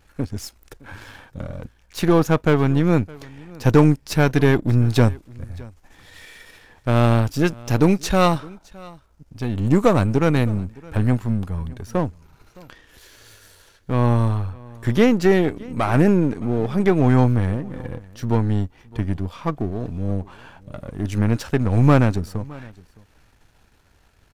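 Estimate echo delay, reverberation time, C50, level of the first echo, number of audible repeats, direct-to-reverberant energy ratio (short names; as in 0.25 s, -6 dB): 0.614 s, none, none, -23.0 dB, 1, none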